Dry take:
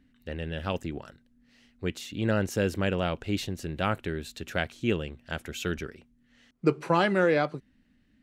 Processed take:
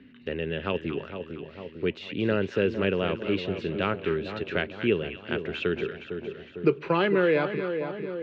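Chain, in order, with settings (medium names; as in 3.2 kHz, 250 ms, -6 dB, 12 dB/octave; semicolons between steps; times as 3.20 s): cabinet simulation 110–3700 Hz, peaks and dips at 410 Hz +9 dB, 760 Hz -6 dB, 2.6 kHz +5 dB; two-band feedback delay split 990 Hz, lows 453 ms, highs 230 ms, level -10.5 dB; three bands compressed up and down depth 40%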